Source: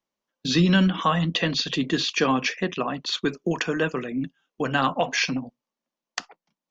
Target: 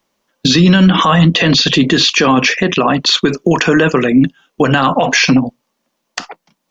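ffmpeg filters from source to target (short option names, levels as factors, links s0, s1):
-af "alimiter=level_in=10:limit=0.891:release=50:level=0:latency=1,volume=0.891"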